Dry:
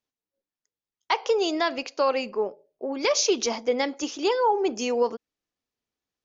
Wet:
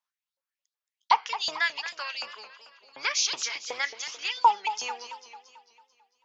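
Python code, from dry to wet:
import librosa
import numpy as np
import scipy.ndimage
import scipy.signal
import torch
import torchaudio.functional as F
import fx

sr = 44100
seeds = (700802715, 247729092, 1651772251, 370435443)

y = fx.octave_divider(x, sr, octaves=1, level_db=2.0)
y = fx.filter_lfo_highpass(y, sr, shape='saw_up', hz=2.7, low_hz=880.0, high_hz=4600.0, q=3.8)
y = fx.echo_warbled(y, sr, ms=222, feedback_pct=51, rate_hz=2.8, cents=151, wet_db=-12.0)
y = F.gain(torch.from_numpy(y), -3.5).numpy()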